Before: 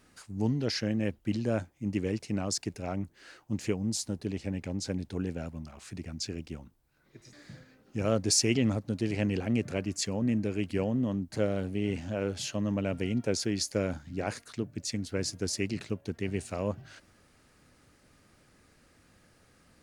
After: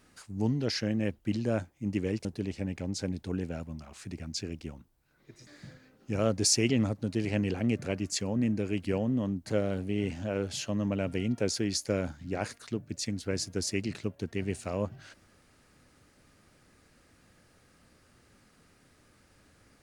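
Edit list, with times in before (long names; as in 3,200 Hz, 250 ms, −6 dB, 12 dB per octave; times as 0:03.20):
0:02.25–0:04.11: remove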